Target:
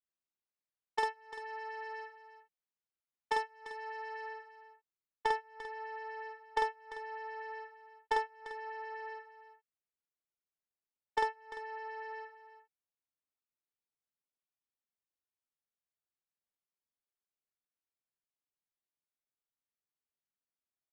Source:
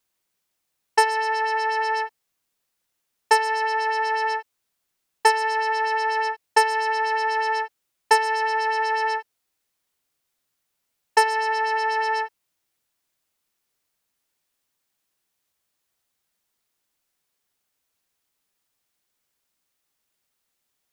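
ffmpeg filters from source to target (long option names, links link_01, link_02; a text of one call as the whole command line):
ffmpeg -i in.wav -filter_complex "[0:a]agate=range=-32dB:threshold=-17dB:ratio=16:detection=peak,asetnsamples=nb_out_samples=441:pad=0,asendcmd='4.28 highshelf g 4.5',highshelf=frequency=3200:gain=12,acompressor=threshold=-38dB:ratio=12,asoftclip=type=hard:threshold=-33.5dB,adynamicsmooth=sensitivity=3:basefreq=2300,asplit=2[link_01][link_02];[link_02]adelay=48,volume=-2.5dB[link_03];[link_01][link_03]amix=inputs=2:normalize=0,aecho=1:1:345:0.211,volume=10.5dB" out.wav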